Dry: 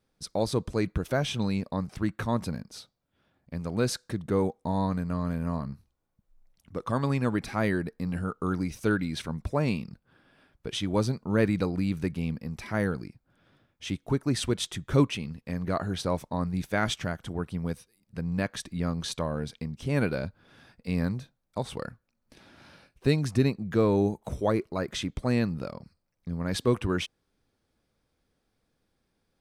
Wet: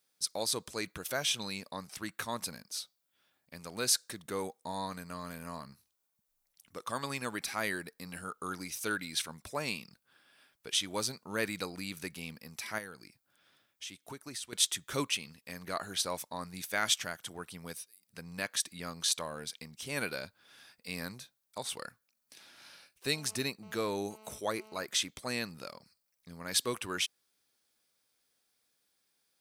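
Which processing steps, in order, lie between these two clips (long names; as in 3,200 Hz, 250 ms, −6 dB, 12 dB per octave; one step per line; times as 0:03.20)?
spectral tilt +4.5 dB per octave
0:12.78–0:14.53: downward compressor 3 to 1, threshold −39 dBFS, peak gain reduction 15 dB
0:23.15–0:24.86: phone interference −52 dBFS
level −5 dB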